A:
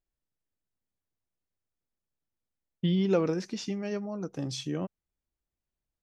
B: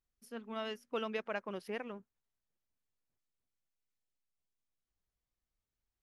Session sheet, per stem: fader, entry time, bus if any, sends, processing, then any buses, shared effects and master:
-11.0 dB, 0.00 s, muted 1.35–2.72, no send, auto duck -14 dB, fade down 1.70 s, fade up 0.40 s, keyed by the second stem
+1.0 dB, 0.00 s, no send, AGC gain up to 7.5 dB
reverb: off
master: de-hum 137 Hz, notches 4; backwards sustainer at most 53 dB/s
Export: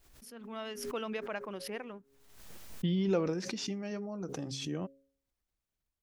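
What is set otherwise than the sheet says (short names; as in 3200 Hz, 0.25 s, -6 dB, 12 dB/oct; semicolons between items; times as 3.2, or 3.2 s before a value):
stem A -11.0 dB -> -4.5 dB; stem B +1.0 dB -> -8.0 dB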